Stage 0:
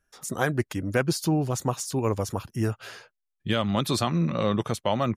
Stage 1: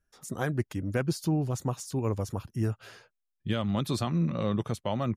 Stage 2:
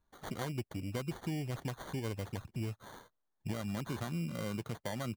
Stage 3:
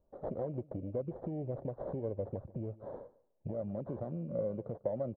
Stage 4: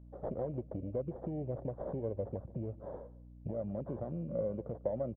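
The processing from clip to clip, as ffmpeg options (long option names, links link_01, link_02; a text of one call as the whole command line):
ffmpeg -i in.wav -af "lowshelf=frequency=320:gain=7.5,volume=-8dB" out.wav
ffmpeg -i in.wav -af "acompressor=threshold=-39dB:ratio=2.5,acrusher=samples=17:mix=1:aa=0.000001" out.wav
ffmpeg -i in.wav -af "acompressor=threshold=-41dB:ratio=6,lowpass=frequency=560:width_type=q:width=4.9,aecho=1:1:147|294:0.1|0.02,volume=3dB" out.wav
ffmpeg -i in.wav -af "aeval=exprs='val(0)+0.00251*(sin(2*PI*60*n/s)+sin(2*PI*2*60*n/s)/2+sin(2*PI*3*60*n/s)/3+sin(2*PI*4*60*n/s)/4+sin(2*PI*5*60*n/s)/5)':channel_layout=same,aresample=8000,aresample=44100" out.wav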